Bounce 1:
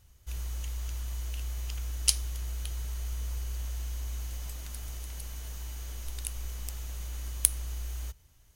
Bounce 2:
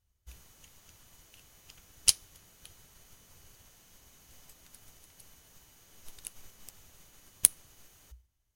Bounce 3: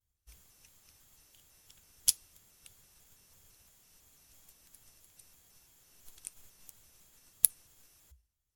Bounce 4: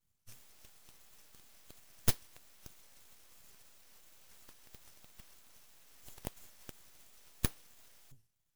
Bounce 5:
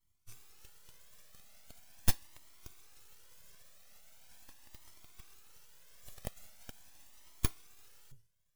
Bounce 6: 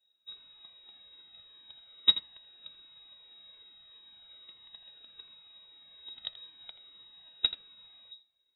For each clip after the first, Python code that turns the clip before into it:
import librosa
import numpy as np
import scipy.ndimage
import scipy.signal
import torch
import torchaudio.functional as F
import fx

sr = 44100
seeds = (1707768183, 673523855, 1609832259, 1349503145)

y1 = fx.hum_notches(x, sr, base_hz=60, count=2)
y1 = fx.upward_expand(y1, sr, threshold_db=-59.0, expansion=1.5)
y1 = y1 * 10.0 ** (2.0 / 20.0)
y2 = fx.peak_eq(y1, sr, hz=12000.0, db=6.5, octaves=1.8)
y2 = fx.vibrato_shape(y2, sr, shape='square', rate_hz=3.0, depth_cents=160.0)
y2 = y2 * 10.0 ** (-8.0 / 20.0)
y3 = fx.tube_stage(y2, sr, drive_db=21.0, bias=0.4)
y3 = np.abs(y3)
y3 = y3 * 10.0 ** (6.0 / 20.0)
y4 = fx.comb_cascade(y3, sr, direction='rising', hz=0.41)
y4 = y4 * 10.0 ** (4.5 / 20.0)
y5 = fx.freq_invert(y4, sr, carrier_hz=3800)
y5 = y5 + 10.0 ** (-13.5 / 20.0) * np.pad(y5, (int(82 * sr / 1000.0), 0))[:len(y5)]